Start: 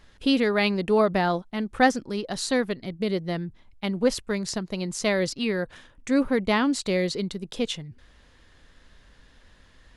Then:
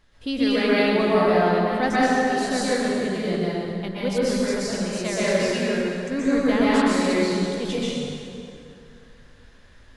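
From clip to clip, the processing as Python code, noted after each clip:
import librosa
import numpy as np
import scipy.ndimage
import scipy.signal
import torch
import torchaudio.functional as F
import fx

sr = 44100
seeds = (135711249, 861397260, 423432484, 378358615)

y = fx.rev_plate(x, sr, seeds[0], rt60_s=2.7, hf_ratio=0.7, predelay_ms=110, drr_db=-9.5)
y = F.gain(torch.from_numpy(y), -6.5).numpy()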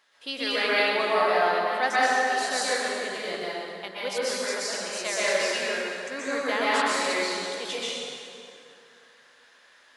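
y = scipy.signal.sosfilt(scipy.signal.butter(2, 710.0, 'highpass', fs=sr, output='sos'), x)
y = F.gain(torch.from_numpy(y), 1.5).numpy()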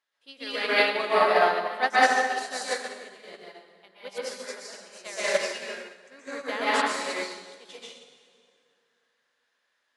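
y = fx.upward_expand(x, sr, threshold_db=-35.0, expansion=2.5)
y = F.gain(torch.from_numpy(y), 5.0).numpy()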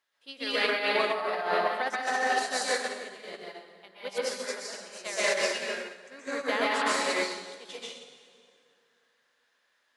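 y = fx.over_compress(x, sr, threshold_db=-27.0, ratio=-1.0)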